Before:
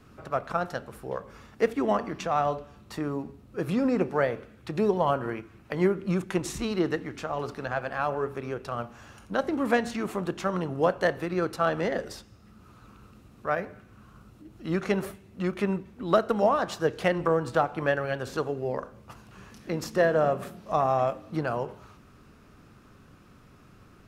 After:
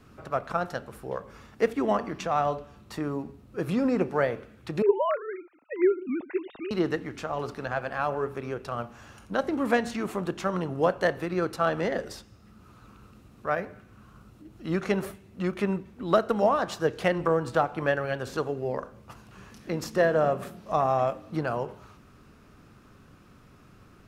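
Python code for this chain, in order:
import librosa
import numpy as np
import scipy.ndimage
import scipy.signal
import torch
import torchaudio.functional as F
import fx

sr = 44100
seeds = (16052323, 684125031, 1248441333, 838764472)

y = fx.sine_speech(x, sr, at=(4.82, 6.71))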